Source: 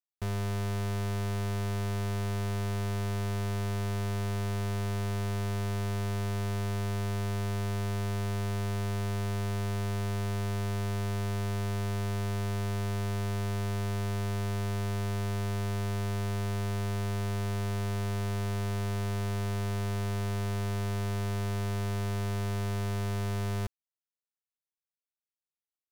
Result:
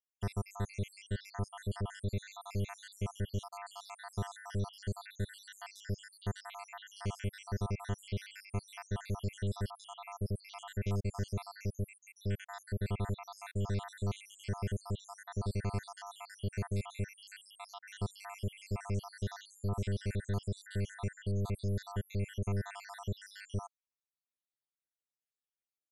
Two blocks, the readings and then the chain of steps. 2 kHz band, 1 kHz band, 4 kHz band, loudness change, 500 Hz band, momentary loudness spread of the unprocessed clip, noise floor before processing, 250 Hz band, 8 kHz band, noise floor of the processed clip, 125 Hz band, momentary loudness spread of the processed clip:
-7.5 dB, -7.0 dB, -7.5 dB, -7.0 dB, -7.0 dB, 0 LU, under -85 dBFS, -7.0 dB, -7.5 dB, under -85 dBFS, -7.0 dB, 8 LU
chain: random holes in the spectrogram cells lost 80%; brick-wall FIR low-pass 12 kHz

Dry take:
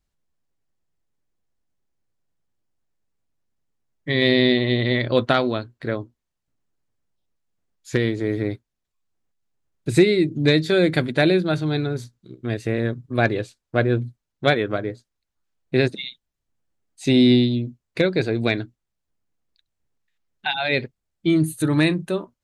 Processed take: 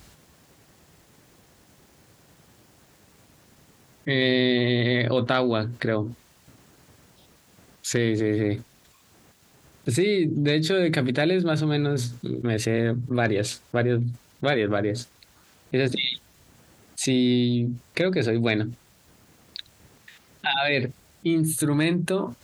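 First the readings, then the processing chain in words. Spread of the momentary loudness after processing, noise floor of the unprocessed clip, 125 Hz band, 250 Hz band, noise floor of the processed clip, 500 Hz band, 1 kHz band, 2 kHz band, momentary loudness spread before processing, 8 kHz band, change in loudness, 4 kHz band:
12 LU, -81 dBFS, -1.5 dB, -3.0 dB, -58 dBFS, -3.0 dB, -2.5 dB, -2.5 dB, 13 LU, +7.5 dB, -3.0 dB, -2.0 dB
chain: high-pass 74 Hz; level flattener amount 70%; trim -9 dB

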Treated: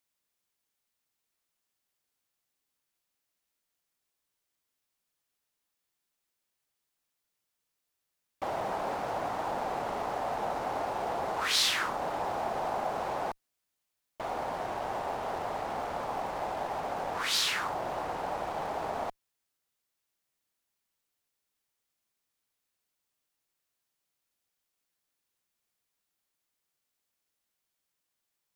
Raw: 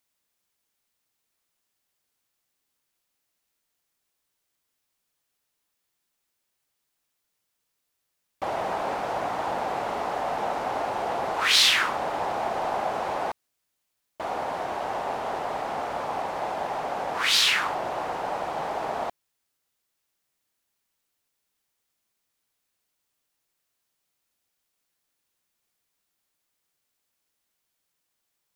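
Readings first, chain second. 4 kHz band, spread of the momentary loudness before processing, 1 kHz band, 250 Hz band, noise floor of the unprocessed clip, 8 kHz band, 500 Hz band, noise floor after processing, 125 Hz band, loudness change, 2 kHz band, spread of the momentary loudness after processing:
-8.5 dB, 12 LU, -5.0 dB, -3.5 dB, -79 dBFS, -5.5 dB, -4.5 dB, -84 dBFS, -2.0 dB, -6.5 dB, -8.0 dB, 8 LU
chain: dynamic bell 2.6 kHz, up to -6 dB, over -37 dBFS, Q 1; in parallel at -12 dB: Schmitt trigger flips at -29 dBFS; on the sum: trim -5 dB

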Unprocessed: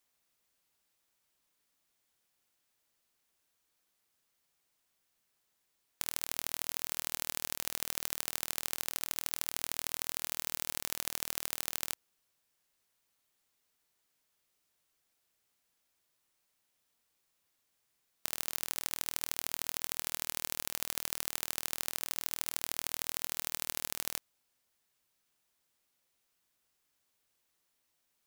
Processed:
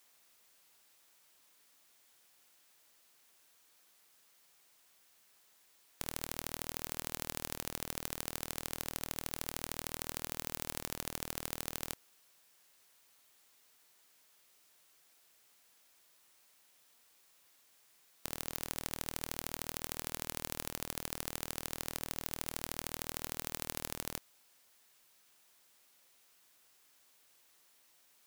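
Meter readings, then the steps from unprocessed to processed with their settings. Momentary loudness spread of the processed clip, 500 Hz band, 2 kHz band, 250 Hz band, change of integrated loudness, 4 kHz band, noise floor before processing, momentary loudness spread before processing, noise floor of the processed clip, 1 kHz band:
1 LU, +3.5 dB, -3.0 dB, +6.0 dB, -4.5 dB, -4.5 dB, -79 dBFS, 1 LU, -68 dBFS, 0.0 dB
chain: bass shelf 210 Hz -10 dB; integer overflow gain 22 dB; trim +11.5 dB

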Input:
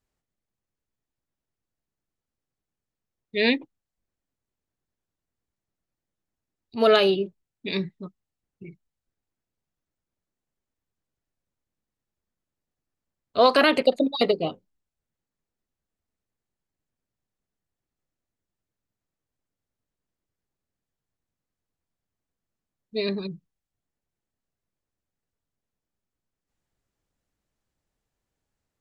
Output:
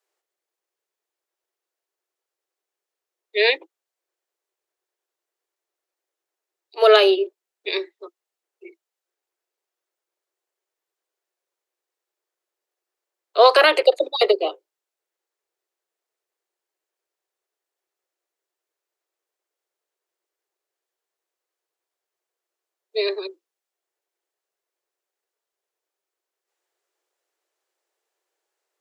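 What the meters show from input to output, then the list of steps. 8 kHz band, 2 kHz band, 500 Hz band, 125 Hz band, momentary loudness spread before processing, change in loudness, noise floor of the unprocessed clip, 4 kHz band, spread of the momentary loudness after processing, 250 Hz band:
no reading, +5.0 dB, +5.0 dB, under -35 dB, 16 LU, +4.5 dB, under -85 dBFS, +5.0 dB, 17 LU, -6.0 dB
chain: steep high-pass 340 Hz 96 dB/octave; trim +5 dB

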